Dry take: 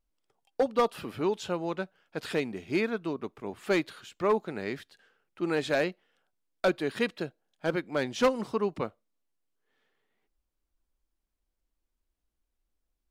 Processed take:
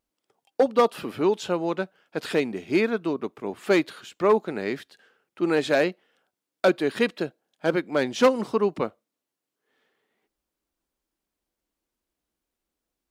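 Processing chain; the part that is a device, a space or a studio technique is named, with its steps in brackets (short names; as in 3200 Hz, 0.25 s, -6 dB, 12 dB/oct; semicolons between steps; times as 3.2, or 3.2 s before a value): filter by subtraction (in parallel: LPF 280 Hz 12 dB/oct + phase invert); on the sum: gain +4.5 dB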